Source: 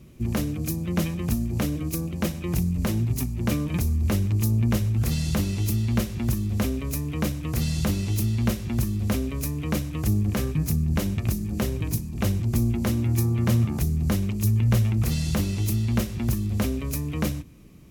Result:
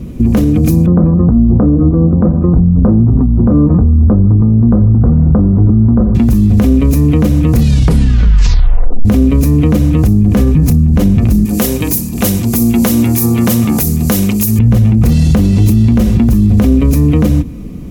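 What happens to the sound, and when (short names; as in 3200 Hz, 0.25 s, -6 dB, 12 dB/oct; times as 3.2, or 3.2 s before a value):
0.86–6.15 Chebyshev low-pass 1300 Hz, order 4
7.57 tape stop 1.48 s
11.45–14.59 RIAA curve recording
whole clip: tilt shelf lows +7 dB, about 860 Hz; comb 4.1 ms, depth 37%; maximiser +19 dB; gain -1 dB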